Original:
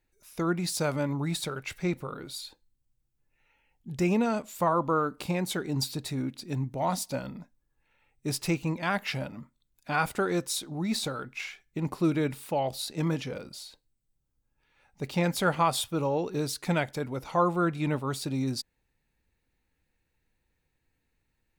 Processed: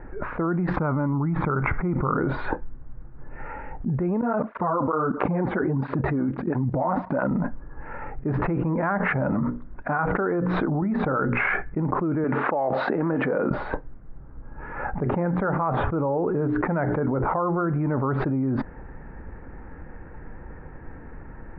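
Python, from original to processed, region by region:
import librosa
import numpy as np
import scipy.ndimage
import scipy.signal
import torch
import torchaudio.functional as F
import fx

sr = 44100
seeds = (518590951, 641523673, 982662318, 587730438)

y = fx.chain(x, sr, fx.air_absorb(metres=280.0),
    fx.comb(ms=0.9, depth=0.45), at=(0.76, 2.17))
y = fx.chain(y, sr, fx.level_steps(step_db=22),
    fx.flanger_cancel(hz=1.5, depth_ms=7.3), at=(4.21, 7.31))
y = fx.chain(y, sr, fx.hum_notches(base_hz=60, count=9),
    fx.chopper(hz=1.2, depth_pct=60, duty_pct=80), at=(8.32, 11.49))
y = fx.chain(y, sr, fx.highpass(hz=240.0, slope=12),
    fx.peak_eq(hz=14000.0, db=13.5, octaves=1.4),
    fx.doppler_dist(depth_ms=0.11), at=(12.24, 13.51))
y = fx.chain(y, sr, fx.air_absorb(metres=170.0),
    fx.hum_notches(base_hz=60, count=7), at=(15.03, 17.9))
y = scipy.signal.sosfilt(scipy.signal.butter(6, 1600.0, 'lowpass', fs=sr, output='sos'), y)
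y = fx.peak_eq(y, sr, hz=100.0, db=-3.5, octaves=0.94)
y = fx.env_flatten(y, sr, amount_pct=100)
y = y * librosa.db_to_amplitude(-2.0)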